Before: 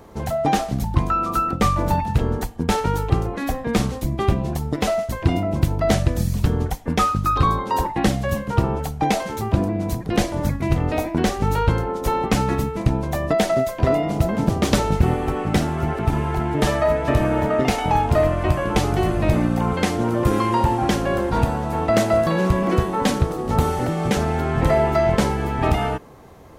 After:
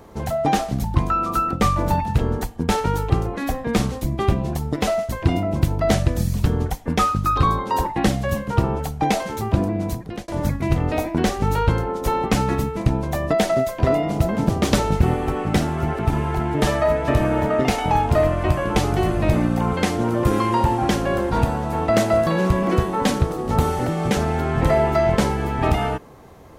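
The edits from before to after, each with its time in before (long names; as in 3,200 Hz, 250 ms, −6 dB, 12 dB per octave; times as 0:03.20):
0:09.85–0:10.28: fade out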